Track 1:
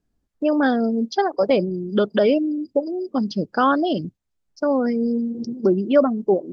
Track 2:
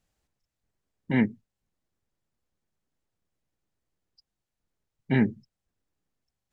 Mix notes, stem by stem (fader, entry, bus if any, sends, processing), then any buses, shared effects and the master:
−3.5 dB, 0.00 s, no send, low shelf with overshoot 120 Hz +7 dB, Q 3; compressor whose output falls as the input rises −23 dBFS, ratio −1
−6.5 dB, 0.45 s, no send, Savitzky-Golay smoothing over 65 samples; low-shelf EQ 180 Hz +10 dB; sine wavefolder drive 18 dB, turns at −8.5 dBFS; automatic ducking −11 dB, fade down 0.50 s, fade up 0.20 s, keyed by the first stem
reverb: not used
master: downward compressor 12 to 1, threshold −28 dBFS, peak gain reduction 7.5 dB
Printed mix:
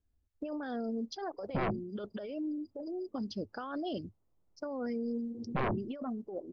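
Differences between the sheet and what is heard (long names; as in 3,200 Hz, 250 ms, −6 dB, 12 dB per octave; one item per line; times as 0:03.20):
stem 1 −3.5 dB → −14.0 dB
stem 2: missing low-shelf EQ 180 Hz +10 dB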